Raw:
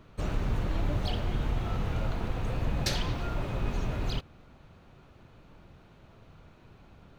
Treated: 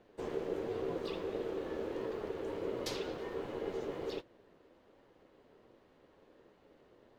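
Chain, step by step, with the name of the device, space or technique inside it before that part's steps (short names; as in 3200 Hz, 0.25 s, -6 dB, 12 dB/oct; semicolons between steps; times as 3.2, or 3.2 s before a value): alien voice (ring modulator 420 Hz; flange 1.4 Hz, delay 8.2 ms, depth 4.9 ms, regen -42%); gain -3 dB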